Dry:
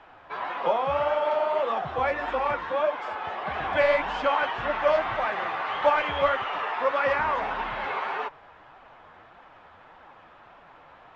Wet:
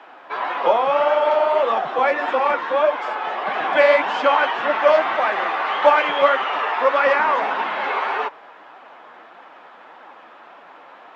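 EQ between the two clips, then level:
high-pass filter 230 Hz 24 dB per octave
+7.5 dB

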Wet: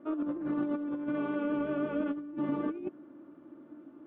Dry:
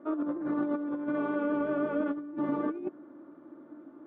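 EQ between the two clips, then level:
low-shelf EQ 250 Hz +10 dB
parametric band 2,800 Hz +11 dB 0.78 octaves
−5.5 dB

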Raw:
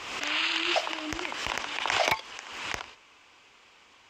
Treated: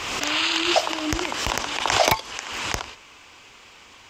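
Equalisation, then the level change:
high-shelf EQ 6,800 Hz +8 dB
dynamic equaliser 2,200 Hz, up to −6 dB, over −38 dBFS, Q 0.97
low-shelf EQ 180 Hz +7.5 dB
+8.0 dB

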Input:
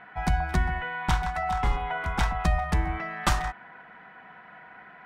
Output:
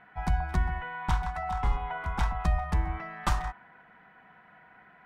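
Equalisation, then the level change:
low-shelf EQ 160 Hz +7.5 dB
dynamic equaliser 1,000 Hz, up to +6 dB, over −42 dBFS, Q 1.7
−8.0 dB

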